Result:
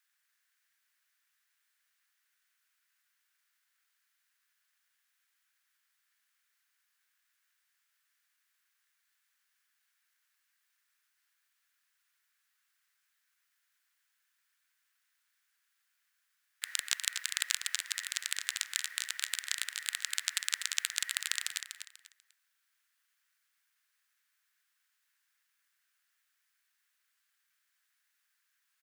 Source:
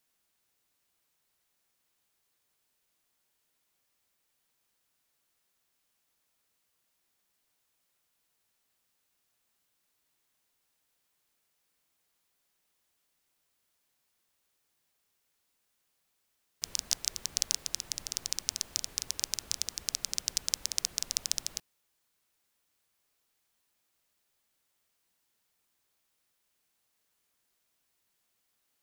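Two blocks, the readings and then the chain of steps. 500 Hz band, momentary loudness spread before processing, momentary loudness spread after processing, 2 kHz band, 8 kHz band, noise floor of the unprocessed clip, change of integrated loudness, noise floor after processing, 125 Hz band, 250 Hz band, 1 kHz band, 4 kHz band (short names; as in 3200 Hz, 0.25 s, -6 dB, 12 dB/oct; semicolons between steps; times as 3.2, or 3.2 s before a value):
under -15 dB, 4 LU, 5 LU, +11.5 dB, -2.5 dB, -78 dBFS, -1.0 dB, -79 dBFS, under -40 dB, under -30 dB, +4.0 dB, -0.5 dB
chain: ring modulator 1900 Hz; resonant high-pass 1600 Hz, resonance Q 3.3; on a send: feedback echo 0.245 s, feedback 27%, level -8 dB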